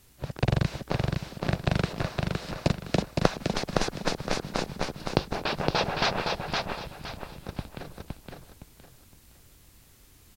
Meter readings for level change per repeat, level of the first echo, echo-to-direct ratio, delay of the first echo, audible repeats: -10.5 dB, -3.5 dB, -3.0 dB, 514 ms, 4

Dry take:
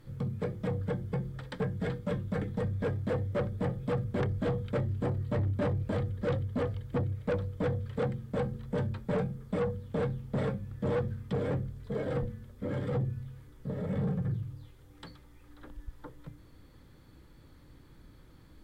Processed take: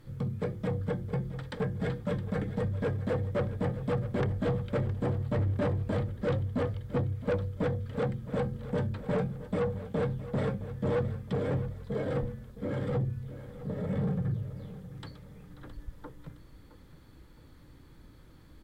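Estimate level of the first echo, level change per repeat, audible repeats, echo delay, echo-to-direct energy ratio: -14.5 dB, -7.5 dB, 3, 665 ms, -13.5 dB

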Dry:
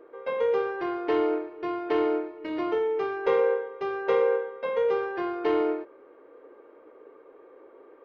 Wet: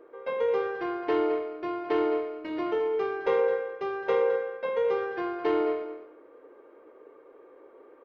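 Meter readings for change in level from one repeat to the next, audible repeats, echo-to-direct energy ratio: -16.0 dB, 2, -11.0 dB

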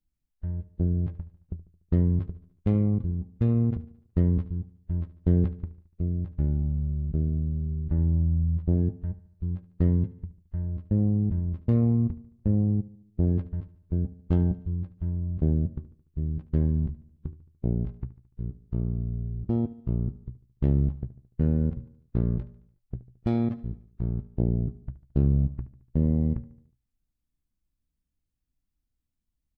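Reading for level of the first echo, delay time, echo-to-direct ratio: -17.0 dB, 73 ms, -15.5 dB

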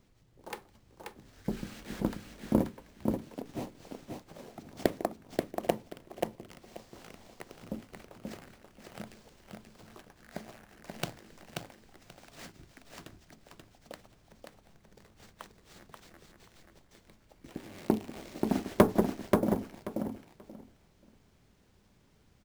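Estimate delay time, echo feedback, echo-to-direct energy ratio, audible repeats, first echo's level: 533 ms, 18%, -4.0 dB, 3, -4.0 dB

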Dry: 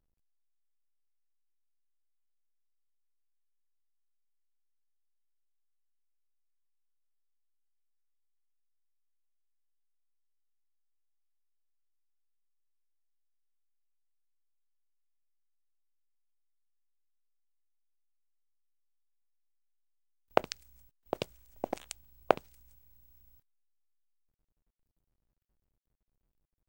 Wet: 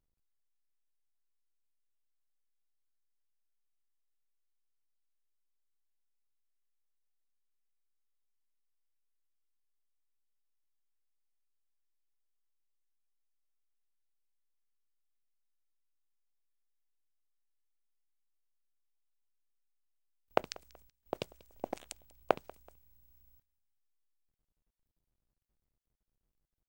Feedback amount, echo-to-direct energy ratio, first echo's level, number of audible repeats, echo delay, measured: 36%, -22.5 dB, -23.0 dB, 2, 189 ms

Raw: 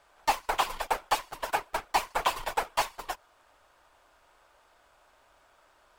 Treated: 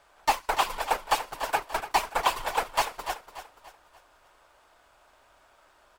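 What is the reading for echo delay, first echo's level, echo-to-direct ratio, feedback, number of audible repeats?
290 ms, -12.0 dB, -11.0 dB, 41%, 3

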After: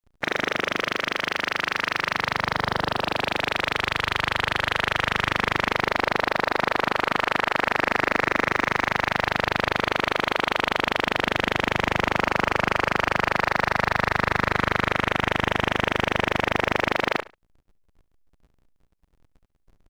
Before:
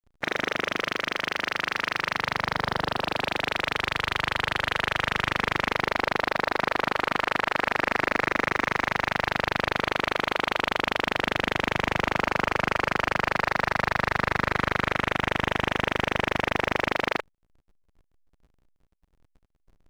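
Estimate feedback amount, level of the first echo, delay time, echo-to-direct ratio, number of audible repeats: 21%, -17.5 dB, 70 ms, -17.5 dB, 2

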